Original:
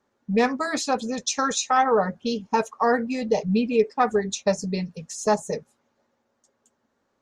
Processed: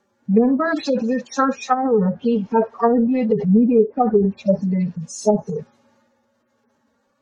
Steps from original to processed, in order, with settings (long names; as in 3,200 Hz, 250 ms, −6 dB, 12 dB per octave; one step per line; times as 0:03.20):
harmonic-percussive split with one part muted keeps harmonic
transient designer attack −1 dB, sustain +6 dB
treble cut that deepens with the level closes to 390 Hz, closed at −17.5 dBFS
level +8.5 dB